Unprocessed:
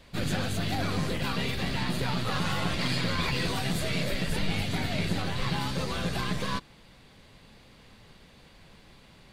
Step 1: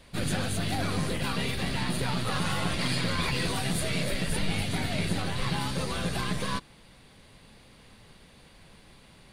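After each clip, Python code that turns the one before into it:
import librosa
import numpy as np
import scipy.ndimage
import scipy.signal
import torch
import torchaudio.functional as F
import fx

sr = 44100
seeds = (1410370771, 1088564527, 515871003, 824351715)

y = fx.peak_eq(x, sr, hz=9500.0, db=11.5, octaves=0.21)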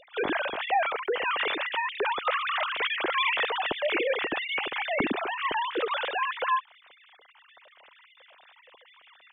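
y = fx.sine_speech(x, sr)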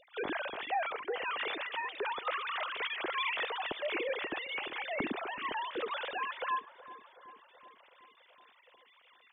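y = fx.echo_bbd(x, sr, ms=375, stages=4096, feedback_pct=66, wet_db=-17)
y = y * 10.0 ** (-8.0 / 20.0)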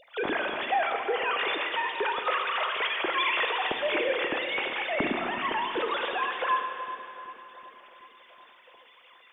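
y = fx.rev_schroeder(x, sr, rt60_s=2.5, comb_ms=25, drr_db=4.5)
y = y * 10.0 ** (6.5 / 20.0)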